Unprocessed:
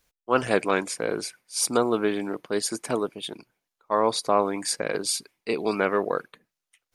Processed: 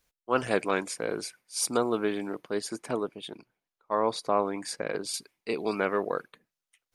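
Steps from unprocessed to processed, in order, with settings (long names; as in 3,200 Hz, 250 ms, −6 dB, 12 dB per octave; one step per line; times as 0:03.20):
0:02.52–0:05.14: high-shelf EQ 4,600 Hz −8 dB
level −4 dB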